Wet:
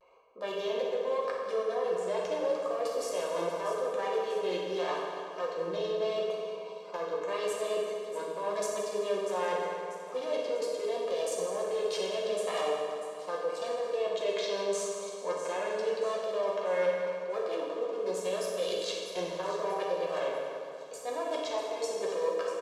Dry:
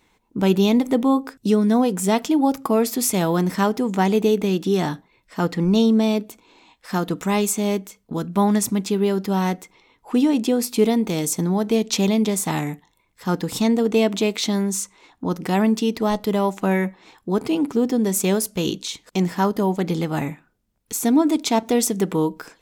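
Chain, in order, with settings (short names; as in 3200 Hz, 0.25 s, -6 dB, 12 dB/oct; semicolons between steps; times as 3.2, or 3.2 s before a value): Wiener smoothing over 25 samples; HPF 470 Hz 24 dB/oct; de-esser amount 80%; LPF 6600 Hz 12 dB/oct; comb 1.8 ms, depth 80%; limiter -20.5 dBFS, peak gain reduction 10.5 dB; reverse; compressor 6:1, threshold -40 dBFS, peak gain reduction 15 dB; reverse; vibrato 0.82 Hz 71 cents; thin delay 0.642 s, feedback 46%, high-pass 4700 Hz, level -10 dB; reverb RT60 2.6 s, pre-delay 3 ms, DRR -4.5 dB; gain +4.5 dB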